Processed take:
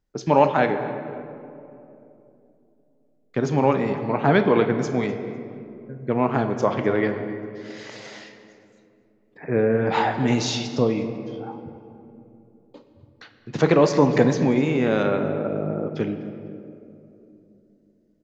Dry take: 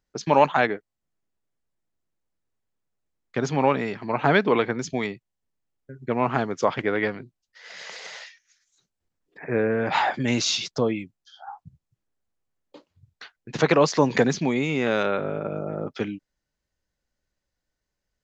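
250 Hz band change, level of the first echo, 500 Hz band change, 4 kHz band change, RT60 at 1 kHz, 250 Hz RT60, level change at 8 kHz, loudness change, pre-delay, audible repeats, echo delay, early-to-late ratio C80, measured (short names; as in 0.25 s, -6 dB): +4.5 dB, -20.0 dB, +3.0 dB, -3.0 dB, 2.5 s, 3.8 s, n/a, +2.0 dB, 20 ms, 1, 0.252 s, 9.0 dB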